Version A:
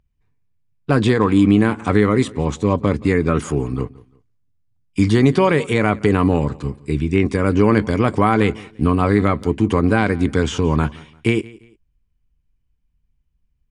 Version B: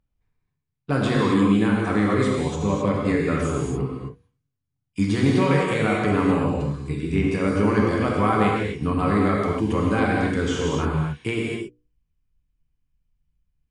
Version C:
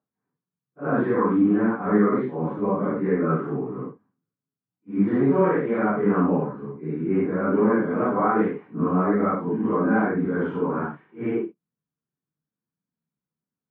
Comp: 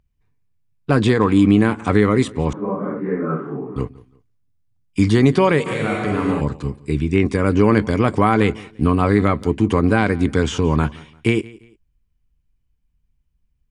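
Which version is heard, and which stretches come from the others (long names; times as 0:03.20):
A
0:02.53–0:03.76: punch in from C
0:05.66–0:06.41: punch in from B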